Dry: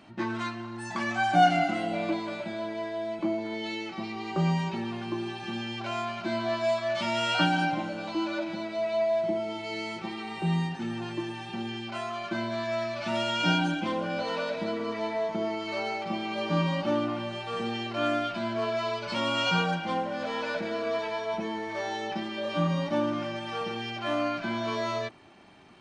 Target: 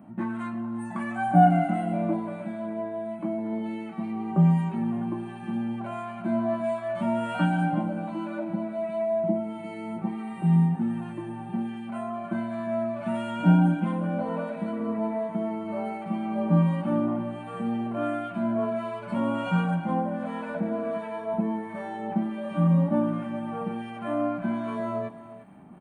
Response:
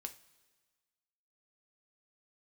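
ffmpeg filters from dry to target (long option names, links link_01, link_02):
-filter_complex "[0:a]firequalizer=gain_entry='entry(100,0);entry(190,13);entry(370,-2);entry(640,3);entry(5200,-27);entry(9400,7)':delay=0.05:min_phase=1,areverse,acompressor=mode=upward:threshold=-43dB:ratio=2.5,areverse,acrossover=split=1200[link_01][link_02];[link_01]aeval=exprs='val(0)*(1-0.5/2+0.5/2*cos(2*PI*1.4*n/s))':channel_layout=same[link_03];[link_02]aeval=exprs='val(0)*(1-0.5/2-0.5/2*cos(2*PI*1.4*n/s))':channel_layout=same[link_04];[link_03][link_04]amix=inputs=2:normalize=0,aecho=1:1:352:0.168"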